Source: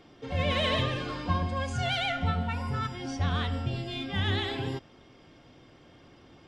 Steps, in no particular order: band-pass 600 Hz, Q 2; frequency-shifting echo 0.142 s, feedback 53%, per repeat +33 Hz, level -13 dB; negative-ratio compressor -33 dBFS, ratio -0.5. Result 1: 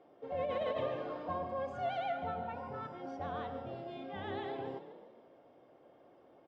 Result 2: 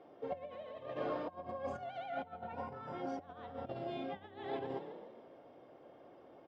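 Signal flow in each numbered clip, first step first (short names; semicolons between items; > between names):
frequency-shifting echo > band-pass > negative-ratio compressor; frequency-shifting echo > negative-ratio compressor > band-pass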